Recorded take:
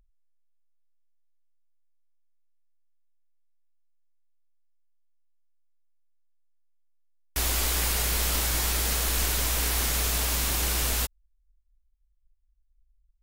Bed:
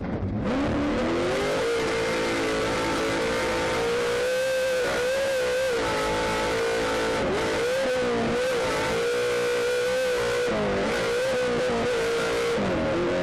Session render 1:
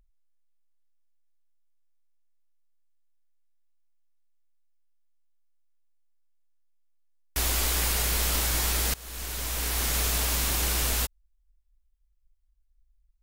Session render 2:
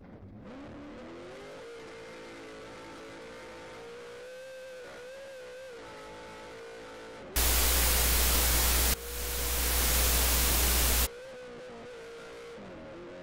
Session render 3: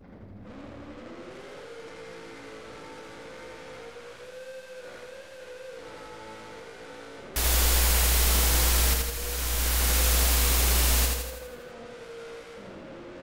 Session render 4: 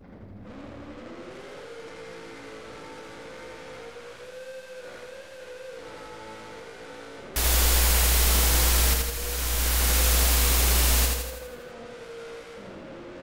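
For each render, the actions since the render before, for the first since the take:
8.94–9.97 s: fade in, from -22.5 dB
add bed -20.5 dB
feedback delay 82 ms, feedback 56%, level -3 dB
trim +1.5 dB

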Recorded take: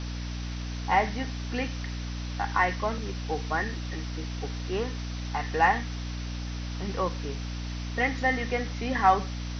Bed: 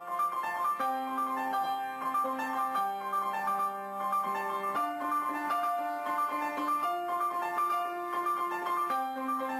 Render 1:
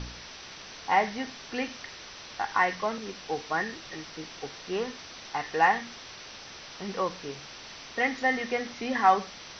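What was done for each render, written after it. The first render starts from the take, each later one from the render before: de-hum 60 Hz, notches 5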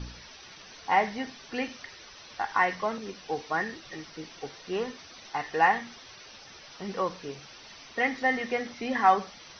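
noise reduction 9 dB, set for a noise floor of -45 dBFS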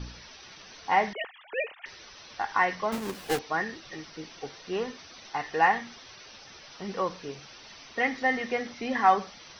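1.13–1.86 s: formants replaced by sine waves; 2.92–3.39 s: square wave that keeps the level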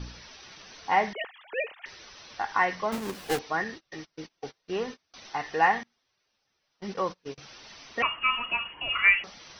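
3.64–5.14 s: gate -44 dBFS, range -29 dB; 5.83–7.38 s: gate -39 dBFS, range -28 dB; 8.02–9.24 s: frequency inversion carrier 3.1 kHz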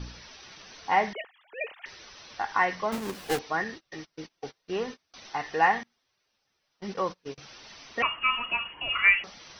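1.21–1.61 s: gain -9.5 dB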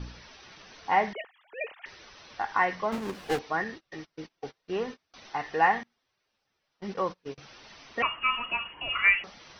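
low-pass 3.4 kHz 6 dB/octave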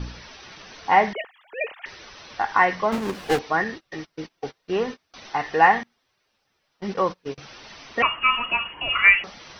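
trim +7 dB

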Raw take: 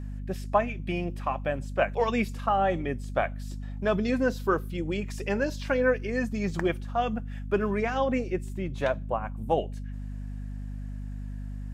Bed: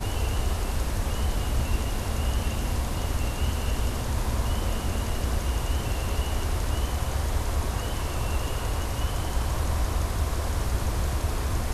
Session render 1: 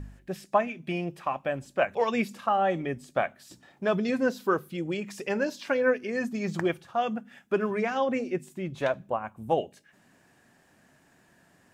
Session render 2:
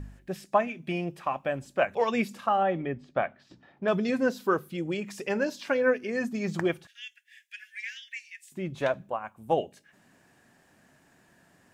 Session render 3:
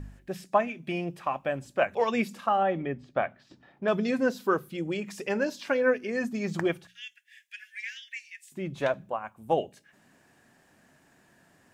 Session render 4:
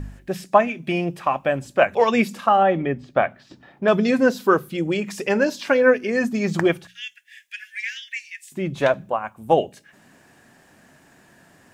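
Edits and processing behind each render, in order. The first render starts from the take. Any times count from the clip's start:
de-hum 50 Hz, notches 5
2.63–3.88 s: distance through air 230 m; 6.87–8.52 s: steep high-pass 1.7 kHz 96 dB/octave; 9.09–9.50 s: bass shelf 480 Hz -8.5 dB
hum notches 60/120/180 Hz
trim +8.5 dB

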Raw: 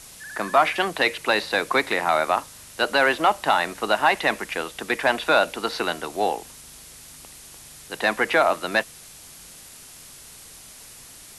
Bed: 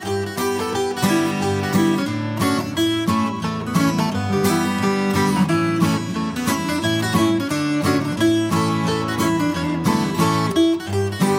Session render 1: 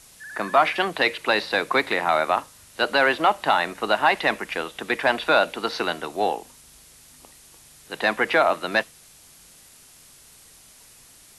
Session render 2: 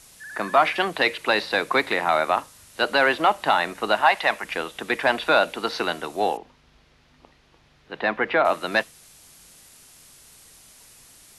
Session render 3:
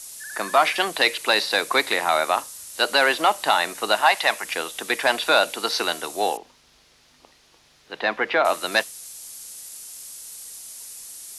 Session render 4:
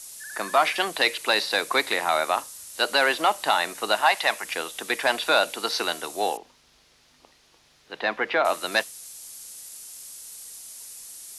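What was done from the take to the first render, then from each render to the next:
noise print and reduce 6 dB
4.01–4.44 s: resonant low shelf 500 Hz -7.5 dB, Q 1.5; 6.37–8.45 s: distance through air 270 m
tone controls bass -8 dB, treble +13 dB
trim -2.5 dB

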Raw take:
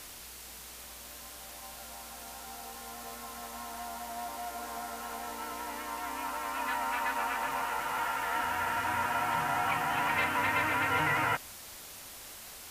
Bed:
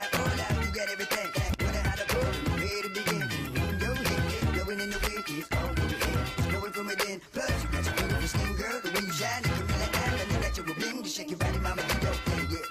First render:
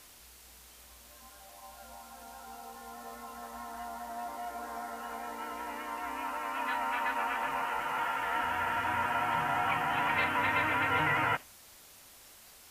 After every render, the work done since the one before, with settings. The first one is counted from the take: noise print and reduce 8 dB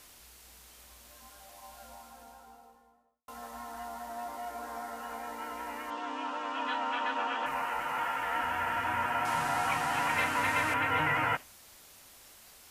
1.77–3.28 s: studio fade out; 5.90–7.46 s: cabinet simulation 160–6800 Hz, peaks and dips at 290 Hz +6 dB, 500 Hz +4 dB, 2.1 kHz -7 dB, 3.3 kHz +10 dB; 9.25–10.74 s: one-bit delta coder 64 kbps, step -33.5 dBFS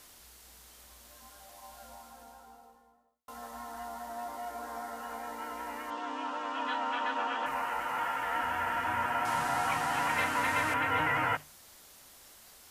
peaking EQ 2.5 kHz -3 dB 0.4 oct; hum notches 50/100/150 Hz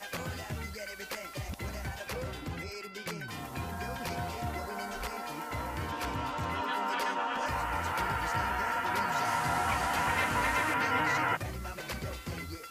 add bed -9.5 dB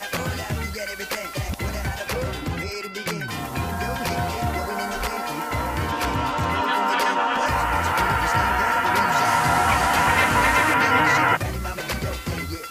trim +11 dB

